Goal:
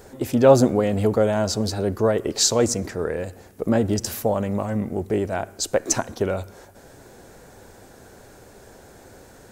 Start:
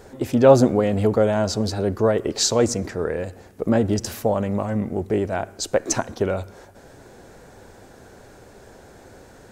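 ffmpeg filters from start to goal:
ffmpeg -i in.wav -af "highshelf=frequency=8600:gain=9.5,volume=-1dB" out.wav

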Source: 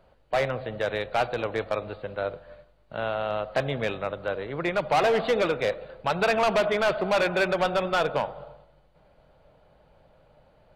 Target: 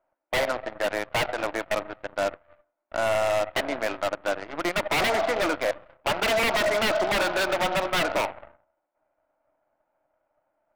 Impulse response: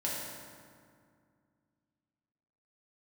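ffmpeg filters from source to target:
-af "highpass=frequency=280:width=0.5412,highpass=frequency=280:width=1.3066,equalizer=frequency=300:width_type=q:width=4:gain=10,equalizer=frequency=450:width_type=q:width=4:gain=-10,equalizer=frequency=650:width_type=q:width=4:gain=9,equalizer=frequency=930:width_type=q:width=4:gain=7,equalizer=frequency=1400:width_type=q:width=4:gain=6,equalizer=frequency=2200:width_type=q:width=4:gain=4,lowpass=frequency=2400:width=0.5412,lowpass=frequency=2400:width=1.3066,aeval=exprs='0.126*(abs(mod(val(0)/0.126+3,4)-2)-1)':channel_layout=same,aeval=exprs='0.133*(cos(1*acos(clip(val(0)/0.133,-1,1)))-cos(1*PI/2))+0.0168*(cos(7*acos(clip(val(0)/0.133,-1,1)))-cos(7*PI/2))+0.00596*(cos(8*acos(clip(val(0)/0.133,-1,1)))-cos(8*PI/2))':channel_layout=same"

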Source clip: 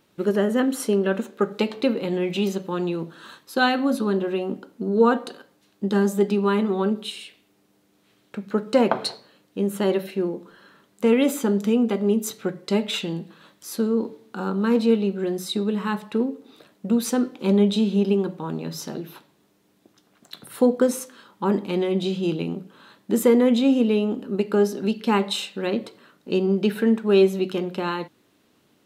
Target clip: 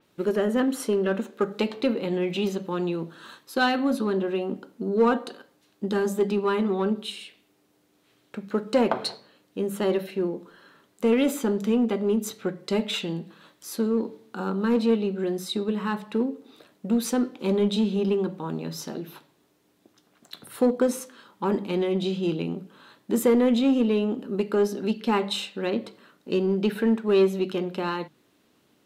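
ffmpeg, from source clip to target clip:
ffmpeg -i in.wav -filter_complex "[0:a]bandreject=frequency=50:width_type=h:width=6,bandreject=frequency=100:width_type=h:width=6,bandreject=frequency=150:width_type=h:width=6,bandreject=frequency=200:width_type=h:width=6,asplit=2[link_01][link_02];[link_02]asoftclip=type=hard:threshold=-18dB,volume=-5dB[link_03];[link_01][link_03]amix=inputs=2:normalize=0,adynamicequalizer=threshold=0.00794:dfrequency=5400:dqfactor=0.7:tfrequency=5400:tqfactor=0.7:attack=5:release=100:ratio=0.375:range=2:mode=cutabove:tftype=highshelf,volume=-5.5dB" out.wav

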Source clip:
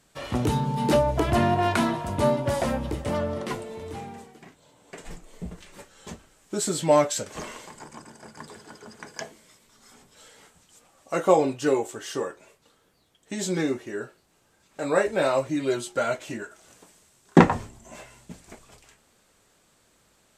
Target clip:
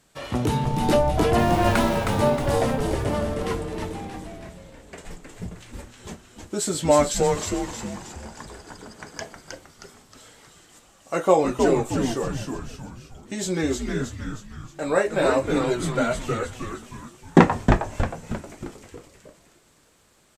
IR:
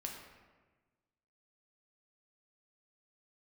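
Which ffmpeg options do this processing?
-filter_complex "[0:a]asettb=1/sr,asplit=3[link_01][link_02][link_03];[link_01]atrim=end=1.384[link_04];[link_02]atrim=start=1.38:end=1.98,asetpts=PTS-STARTPTS,afade=type=in:duration=0.004:curve=qsin,afade=type=out:start_time=0.596:duration=0.004:curve=qsin,aeval=exprs='val(0)*gte(abs(val(0)),0.0251)':channel_layout=same[link_05];[link_03]atrim=start=1.976[link_06];[link_04][link_05]acrossfade=duration=0.004:curve1=hsin:curve2=qsin[link_07];[link_07][link_06]acrossfade=duration=0.004:curve1=qsin:curve2=hsin,asplit=7[link_08][link_09][link_10][link_11][link_12][link_13][link_14];[link_09]adelay=314,afreqshift=-130,volume=-4dB[link_15];[link_10]adelay=628,afreqshift=-260,volume=-10.4dB[link_16];[link_11]adelay=942,afreqshift=-390,volume=-16.8dB[link_17];[link_12]adelay=1256,afreqshift=-520,volume=-23.1dB[link_18];[link_13]adelay=1570,afreqshift=-650,volume=-29.5dB[link_19];[link_14]adelay=1884,afreqshift=-780,volume=-35.9dB[link_20];[link_08][link_15][link_16][link_17][link_18][link_19][link_20]amix=inputs=7:normalize=0,volume=1dB"

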